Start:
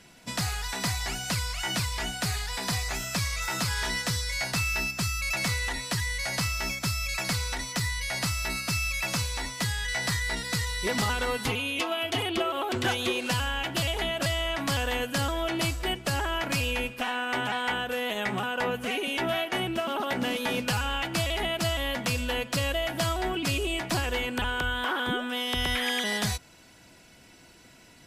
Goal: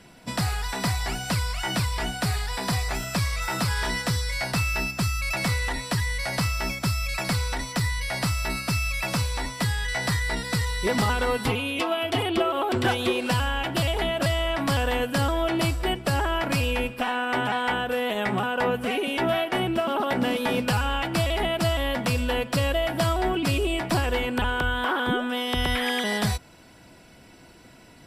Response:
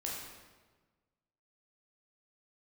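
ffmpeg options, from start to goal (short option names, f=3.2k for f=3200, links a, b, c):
-filter_complex "[0:a]bandreject=f=6.5k:w=6.7,acrossover=split=1400[a][b];[a]acontrast=35[c];[c][b]amix=inputs=2:normalize=0"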